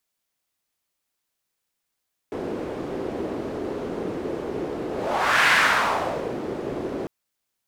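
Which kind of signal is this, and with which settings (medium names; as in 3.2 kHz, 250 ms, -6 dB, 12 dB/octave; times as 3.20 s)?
whoosh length 4.75 s, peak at 3.17 s, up 0.64 s, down 0.95 s, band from 380 Hz, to 1.8 kHz, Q 2.1, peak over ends 12 dB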